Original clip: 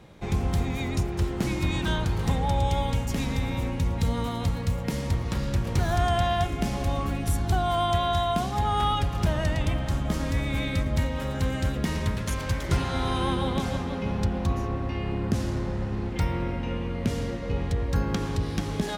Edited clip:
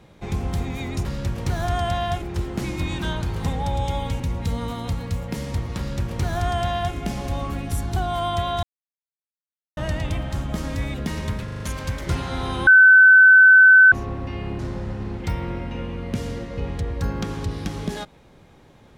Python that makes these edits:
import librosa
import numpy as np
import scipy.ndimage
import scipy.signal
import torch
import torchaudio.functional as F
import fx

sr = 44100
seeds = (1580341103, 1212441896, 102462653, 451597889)

y = fx.edit(x, sr, fx.cut(start_s=3.03, length_s=0.73),
    fx.duplicate(start_s=5.34, length_s=1.17, to_s=1.05),
    fx.silence(start_s=8.19, length_s=1.14),
    fx.cut(start_s=10.5, length_s=1.22),
    fx.stutter(start_s=12.22, slice_s=0.04, count=5),
    fx.bleep(start_s=13.29, length_s=1.25, hz=1520.0, db=-7.0),
    fx.cut(start_s=15.21, length_s=0.3), tone=tone)